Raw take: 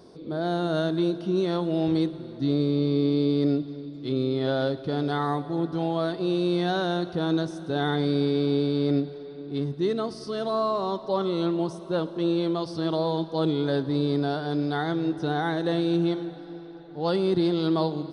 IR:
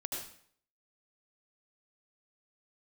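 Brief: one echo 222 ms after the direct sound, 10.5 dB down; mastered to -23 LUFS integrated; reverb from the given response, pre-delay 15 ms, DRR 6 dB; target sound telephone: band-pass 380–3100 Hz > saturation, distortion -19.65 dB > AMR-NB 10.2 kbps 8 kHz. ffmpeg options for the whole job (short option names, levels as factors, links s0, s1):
-filter_complex "[0:a]aecho=1:1:222:0.299,asplit=2[s0][s1];[1:a]atrim=start_sample=2205,adelay=15[s2];[s1][s2]afir=irnorm=-1:irlink=0,volume=0.447[s3];[s0][s3]amix=inputs=2:normalize=0,highpass=380,lowpass=3100,asoftclip=threshold=0.106,volume=2.24" -ar 8000 -c:a libopencore_amrnb -b:a 10200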